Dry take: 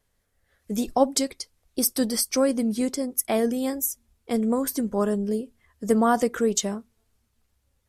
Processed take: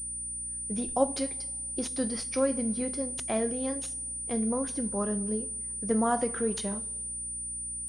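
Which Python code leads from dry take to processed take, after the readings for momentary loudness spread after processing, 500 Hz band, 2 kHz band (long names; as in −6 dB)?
6 LU, −6.0 dB, −6.0 dB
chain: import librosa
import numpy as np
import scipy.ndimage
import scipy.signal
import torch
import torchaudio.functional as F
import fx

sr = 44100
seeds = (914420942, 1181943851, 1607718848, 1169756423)

y = fx.rev_double_slope(x, sr, seeds[0], early_s=0.35, late_s=1.6, knee_db=-18, drr_db=8.5)
y = fx.add_hum(y, sr, base_hz=60, snr_db=18)
y = fx.pwm(y, sr, carrier_hz=9300.0)
y = F.gain(torch.from_numpy(y), -6.5).numpy()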